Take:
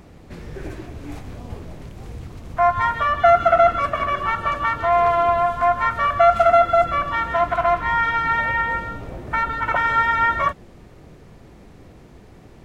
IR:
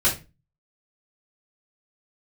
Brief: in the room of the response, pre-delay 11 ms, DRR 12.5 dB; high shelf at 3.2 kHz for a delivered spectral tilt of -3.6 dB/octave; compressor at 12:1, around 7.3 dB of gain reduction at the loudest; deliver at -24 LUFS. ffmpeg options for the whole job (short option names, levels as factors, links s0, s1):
-filter_complex "[0:a]highshelf=f=3200:g=-5.5,acompressor=threshold=0.141:ratio=12,asplit=2[s0][s1];[1:a]atrim=start_sample=2205,adelay=11[s2];[s1][s2]afir=irnorm=-1:irlink=0,volume=0.0473[s3];[s0][s3]amix=inputs=2:normalize=0,volume=0.841"